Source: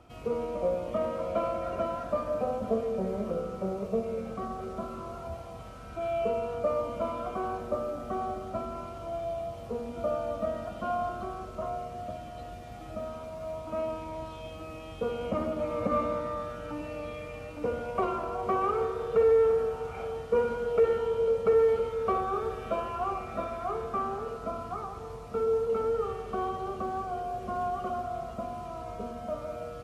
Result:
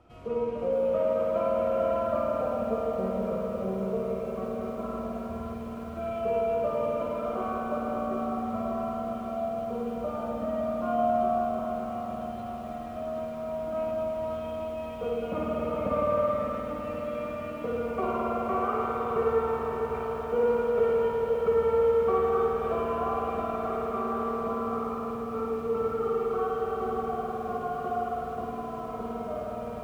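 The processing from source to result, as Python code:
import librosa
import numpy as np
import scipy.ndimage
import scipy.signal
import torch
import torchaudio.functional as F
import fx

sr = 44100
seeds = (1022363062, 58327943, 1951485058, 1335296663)

y = fx.high_shelf(x, sr, hz=4300.0, db=-7.5)
y = fx.echo_feedback(y, sr, ms=559, feedback_pct=44, wet_db=-9.5)
y = fx.rev_spring(y, sr, rt60_s=3.5, pass_ms=(52,), chirp_ms=70, drr_db=-3.5)
y = fx.echo_crushed(y, sr, ms=464, feedback_pct=80, bits=8, wet_db=-14.0)
y = y * 10.0 ** (-3.5 / 20.0)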